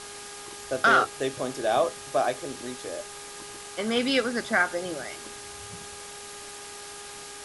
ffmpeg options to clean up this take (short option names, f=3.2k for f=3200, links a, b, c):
-af "bandreject=f=408.7:t=h:w=4,bandreject=f=817.4:t=h:w=4,bandreject=f=1.2261k:t=h:w=4,bandreject=f=1.6348k:t=h:w=4,afwtdn=0.01"